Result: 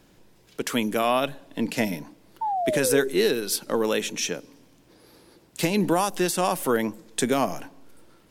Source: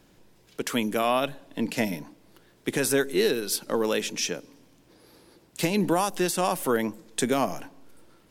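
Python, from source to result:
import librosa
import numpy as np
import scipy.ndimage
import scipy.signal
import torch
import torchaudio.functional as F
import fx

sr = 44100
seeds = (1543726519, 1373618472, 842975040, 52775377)

y = fx.spec_paint(x, sr, seeds[0], shape='fall', start_s=2.41, length_s=0.67, low_hz=390.0, high_hz=920.0, level_db=-27.0)
y = fx.notch(y, sr, hz=4900.0, q=7.0, at=(3.73, 4.3))
y = F.gain(torch.from_numpy(y), 1.5).numpy()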